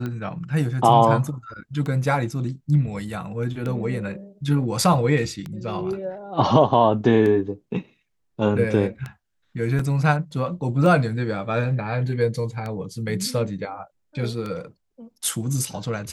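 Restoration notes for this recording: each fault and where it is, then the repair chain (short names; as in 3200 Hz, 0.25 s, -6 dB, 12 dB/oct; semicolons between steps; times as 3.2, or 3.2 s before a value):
tick 33 1/3 rpm -18 dBFS
9.79 gap 4.2 ms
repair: de-click; interpolate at 9.79, 4.2 ms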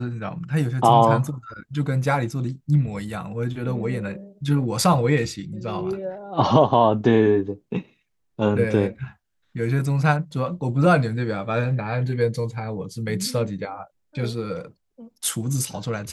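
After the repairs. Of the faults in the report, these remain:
none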